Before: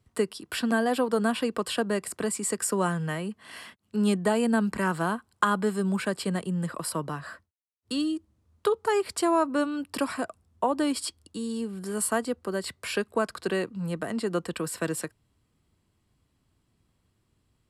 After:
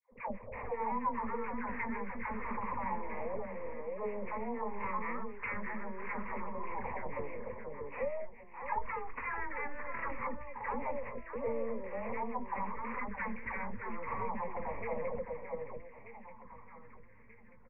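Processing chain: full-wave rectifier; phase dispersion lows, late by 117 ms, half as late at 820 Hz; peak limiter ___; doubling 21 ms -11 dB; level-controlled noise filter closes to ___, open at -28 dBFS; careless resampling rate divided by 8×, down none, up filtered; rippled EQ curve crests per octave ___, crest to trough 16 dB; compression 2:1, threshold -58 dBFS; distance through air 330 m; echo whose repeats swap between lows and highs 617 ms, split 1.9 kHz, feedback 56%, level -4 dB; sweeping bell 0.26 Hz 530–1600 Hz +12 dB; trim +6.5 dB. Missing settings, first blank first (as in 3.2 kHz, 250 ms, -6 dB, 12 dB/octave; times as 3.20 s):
-25.5 dBFS, 800 Hz, 0.94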